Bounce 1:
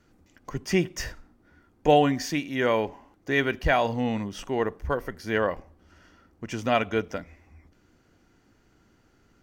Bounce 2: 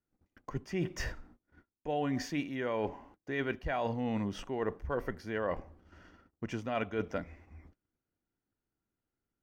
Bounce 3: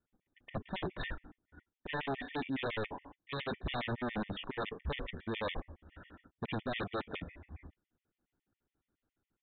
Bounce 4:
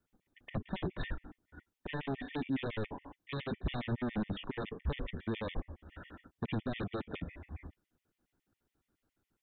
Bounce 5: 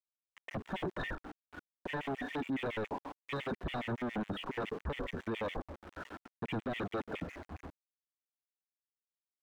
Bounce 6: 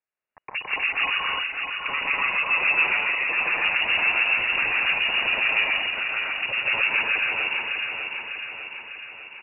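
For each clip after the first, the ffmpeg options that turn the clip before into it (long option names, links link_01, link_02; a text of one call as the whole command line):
ffmpeg -i in.wav -af "agate=range=-27dB:threshold=-56dB:ratio=16:detection=peak,highshelf=frequency=3700:gain=-10.5,areverse,acompressor=threshold=-30dB:ratio=10,areverse" out.wav
ffmpeg -i in.wav -af "aresample=8000,aeval=exprs='0.0188*(abs(mod(val(0)/0.0188+3,4)-2)-1)':channel_layout=same,aresample=44100,afftfilt=real='re*gt(sin(2*PI*7.2*pts/sr)*(1-2*mod(floor(b*sr/1024/1800),2)),0)':imag='im*gt(sin(2*PI*7.2*pts/sr)*(1-2*mod(floor(b*sr/1024/1800),2)),0)':win_size=1024:overlap=0.75,volume=5.5dB" out.wav
ffmpeg -i in.wav -filter_complex "[0:a]acrossover=split=360[link_01][link_02];[link_02]acompressor=threshold=-50dB:ratio=2.5[link_03];[link_01][link_03]amix=inputs=2:normalize=0,volume=4dB" out.wav
ffmpeg -i in.wav -filter_complex "[0:a]aeval=exprs='val(0)*gte(abs(val(0)),0.00224)':channel_layout=same,asplit=2[link_01][link_02];[link_02]highpass=frequency=720:poles=1,volume=18dB,asoftclip=type=tanh:threshold=-23dB[link_03];[link_01][link_03]amix=inputs=2:normalize=0,lowpass=frequency=1200:poles=1,volume=-6dB,alimiter=level_in=4.5dB:limit=-24dB:level=0:latency=1:release=96,volume=-4.5dB" out.wav
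ffmpeg -i in.wav -filter_complex "[0:a]asplit=2[link_01][link_02];[link_02]aecho=0:1:600|1200|1800|2400|3000|3600|4200:0.501|0.281|0.157|0.088|0.0493|0.0276|0.0155[link_03];[link_01][link_03]amix=inputs=2:normalize=0,lowpass=frequency=2500:width_type=q:width=0.5098,lowpass=frequency=2500:width_type=q:width=0.6013,lowpass=frequency=2500:width_type=q:width=0.9,lowpass=frequency=2500:width_type=q:width=2.563,afreqshift=-2900,asplit=2[link_04][link_05];[link_05]aecho=0:1:125.4|163.3|244.9|288.6:0.398|0.891|0.794|0.891[link_06];[link_04][link_06]amix=inputs=2:normalize=0,volume=9dB" out.wav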